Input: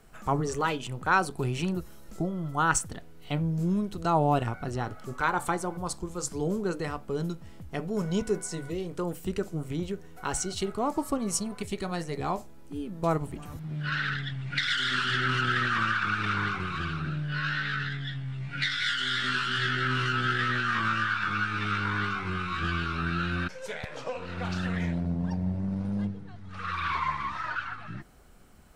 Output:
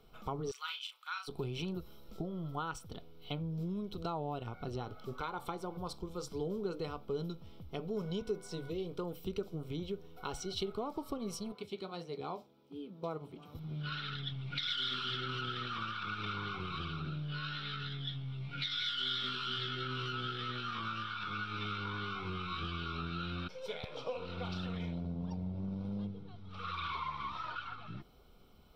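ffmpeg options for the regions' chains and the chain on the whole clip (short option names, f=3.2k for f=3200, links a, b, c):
-filter_complex "[0:a]asettb=1/sr,asplit=3[a][b][c];[a]atrim=end=0.514[d];[b]atrim=start=0.51:end=1.28,asetpts=PTS-STARTPTS,afade=t=in:d=0.004:c=qsin,afade=t=out:st=0.766:d=0.004:c=qsin,highpass=f=1.5k:w=0.5412,highpass=f=1.5k:w=1.3066,asplit=2[e][f];[f]adelay=36,volume=-6.5dB[g];[e][g]amix=inputs=2:normalize=0,atrim=end_sample=33957[h];[c]atrim=start=1.276[i];[d][h]acrossfade=d=0.004:c1=hsin:c2=qsin[j];[j][i]acrossfade=d=0.004:c1=qsin:c2=hsin,asettb=1/sr,asplit=3[k][l][m];[k]atrim=end=11.524[n];[l]atrim=start=11.52:end=13.55,asetpts=PTS-STARTPTS,afade=t=in:d=0.004:c=qsin,afade=t=out:st=2.026:d=0.004:c=qsin,highpass=160,equalizer=f=13k:w=0.57:g=-5.5,flanger=delay=6.3:depth=2.4:regen=-67:speed=1.5:shape=triangular[o];[m]atrim=start=13.546[p];[n][o]acrossfade=d=0.004:c1=hsin:c2=qsin[q];[q][p]acrossfade=d=0.004:c1=qsin:c2=hsin,acompressor=threshold=-29dB:ratio=6,superequalizer=7b=1.58:11b=0.251:13b=2:15b=0.251:16b=0.316,volume=-6dB"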